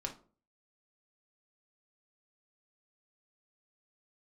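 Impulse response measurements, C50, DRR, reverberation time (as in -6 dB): 12.0 dB, 1.0 dB, 0.40 s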